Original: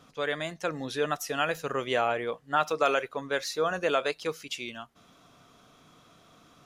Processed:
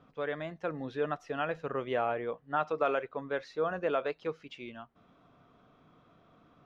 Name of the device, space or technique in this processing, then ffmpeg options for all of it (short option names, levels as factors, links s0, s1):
phone in a pocket: -af "lowpass=3300,highshelf=f=2100:g=-11,volume=0.75"